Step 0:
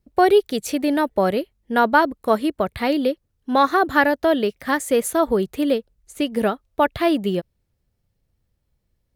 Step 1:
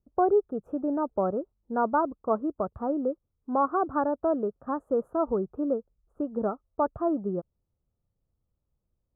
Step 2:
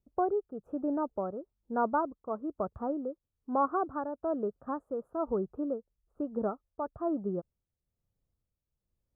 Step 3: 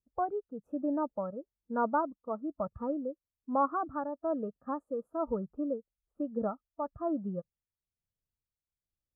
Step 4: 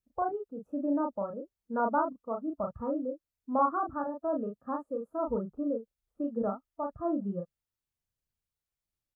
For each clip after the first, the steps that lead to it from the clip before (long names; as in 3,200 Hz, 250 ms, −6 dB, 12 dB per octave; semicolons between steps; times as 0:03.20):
elliptic low-pass filter 1,300 Hz, stop band 40 dB; level −7.5 dB
amplitude tremolo 1.1 Hz, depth 54%; level −3 dB
noise reduction from a noise print of the clip's start 12 dB
double-tracking delay 35 ms −3.5 dB